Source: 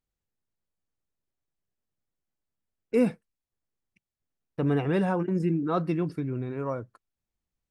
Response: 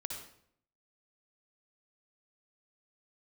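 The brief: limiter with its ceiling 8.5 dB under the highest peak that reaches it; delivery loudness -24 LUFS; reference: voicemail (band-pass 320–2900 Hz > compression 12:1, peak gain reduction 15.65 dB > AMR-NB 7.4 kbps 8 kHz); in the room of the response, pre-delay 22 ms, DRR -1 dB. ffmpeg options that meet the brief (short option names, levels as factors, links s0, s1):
-filter_complex "[0:a]alimiter=limit=0.0841:level=0:latency=1,asplit=2[s0][s1];[1:a]atrim=start_sample=2205,adelay=22[s2];[s1][s2]afir=irnorm=-1:irlink=0,volume=1.19[s3];[s0][s3]amix=inputs=2:normalize=0,highpass=320,lowpass=2900,acompressor=threshold=0.0112:ratio=12,volume=11.2" -ar 8000 -c:a libopencore_amrnb -b:a 7400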